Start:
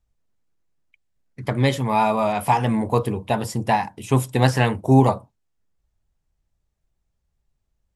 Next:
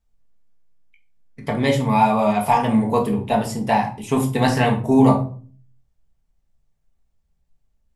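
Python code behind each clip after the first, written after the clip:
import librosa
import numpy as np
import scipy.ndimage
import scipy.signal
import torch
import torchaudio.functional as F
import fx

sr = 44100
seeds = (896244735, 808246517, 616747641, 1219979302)

y = fx.room_shoebox(x, sr, seeds[0], volume_m3=320.0, walls='furnished', distance_m=1.6)
y = F.gain(torch.from_numpy(y), -1.5).numpy()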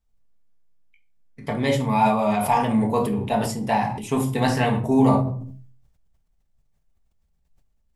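y = fx.sustainer(x, sr, db_per_s=56.0)
y = F.gain(torch.from_numpy(y), -3.5).numpy()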